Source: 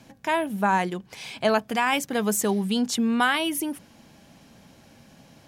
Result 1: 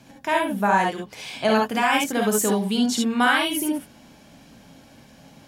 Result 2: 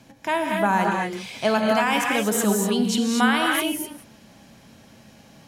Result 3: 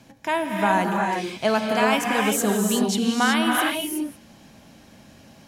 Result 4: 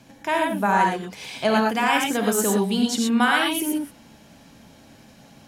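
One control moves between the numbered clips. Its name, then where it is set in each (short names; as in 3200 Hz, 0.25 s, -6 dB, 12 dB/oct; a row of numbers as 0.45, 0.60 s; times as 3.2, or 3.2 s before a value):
non-linear reverb, gate: 90, 270, 400, 140 ms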